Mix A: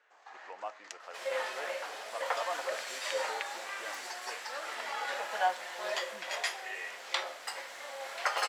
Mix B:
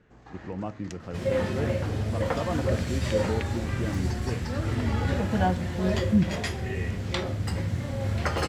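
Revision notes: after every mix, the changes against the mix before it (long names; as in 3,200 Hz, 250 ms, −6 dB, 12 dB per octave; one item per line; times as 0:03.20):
master: remove high-pass filter 670 Hz 24 dB per octave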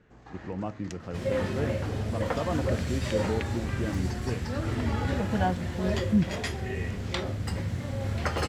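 second sound: send −8.5 dB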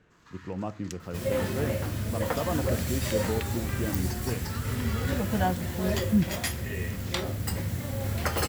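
first sound: add Chebyshev high-pass with heavy ripple 940 Hz, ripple 3 dB
master: remove high-frequency loss of the air 79 metres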